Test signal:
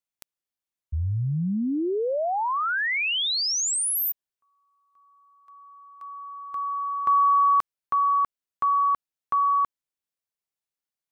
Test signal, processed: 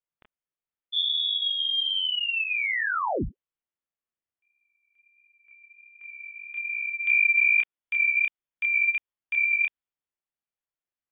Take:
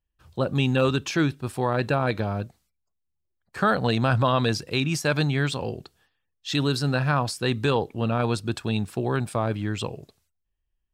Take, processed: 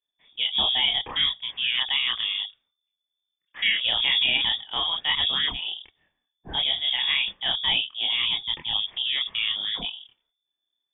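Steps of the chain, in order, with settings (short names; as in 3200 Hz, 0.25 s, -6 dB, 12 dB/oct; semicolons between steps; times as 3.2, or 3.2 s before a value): inverted band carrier 3500 Hz; chorus voices 2, 1.4 Hz, delay 28 ms, depth 3 ms; low-pass opened by the level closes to 2600 Hz, open at -20.5 dBFS; gain +1.5 dB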